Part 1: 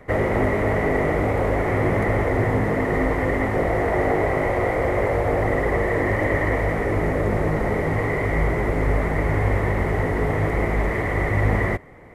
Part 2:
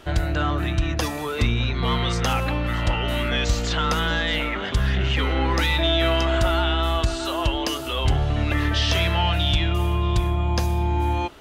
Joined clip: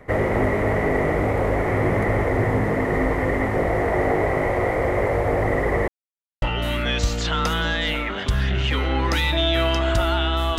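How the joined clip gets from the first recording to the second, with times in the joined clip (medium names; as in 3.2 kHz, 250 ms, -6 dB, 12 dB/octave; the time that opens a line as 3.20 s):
part 1
5.88–6.42 s: mute
6.42 s: go over to part 2 from 2.88 s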